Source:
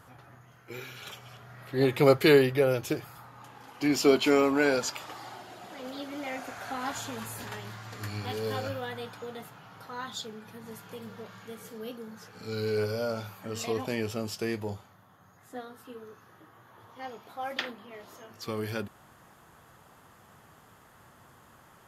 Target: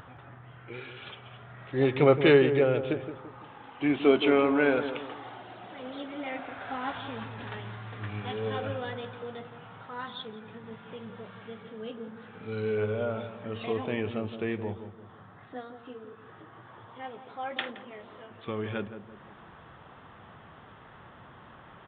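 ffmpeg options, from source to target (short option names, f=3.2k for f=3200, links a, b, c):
-filter_complex "[0:a]acompressor=mode=upward:threshold=-43dB:ratio=2.5,aresample=8000,aresample=44100,asplit=2[a][b];[b]adelay=170,lowpass=f=1k:p=1,volume=-9dB,asplit=2[c][d];[d]adelay=170,lowpass=f=1k:p=1,volume=0.45,asplit=2[e][f];[f]adelay=170,lowpass=f=1k:p=1,volume=0.45,asplit=2[g][h];[h]adelay=170,lowpass=f=1k:p=1,volume=0.45,asplit=2[i][j];[j]adelay=170,lowpass=f=1k:p=1,volume=0.45[k];[a][c][e][g][i][k]amix=inputs=6:normalize=0"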